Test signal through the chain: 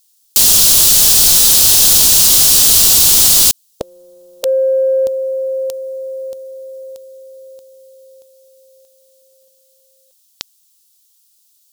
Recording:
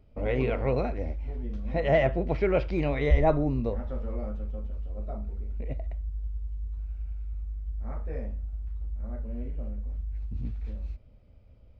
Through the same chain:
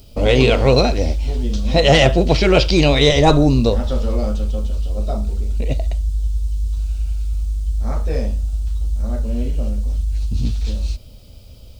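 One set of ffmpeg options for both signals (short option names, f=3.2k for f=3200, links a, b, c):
-af "afftfilt=real='re*lt(hypot(re,im),0.708)':imag='im*lt(hypot(re,im),0.708)':win_size=1024:overlap=0.75,aexciter=amount=12.4:drive=2.7:freq=3.1k,aeval=exprs='0.944*sin(PI/2*3.55*val(0)/0.944)':c=same,volume=-1dB"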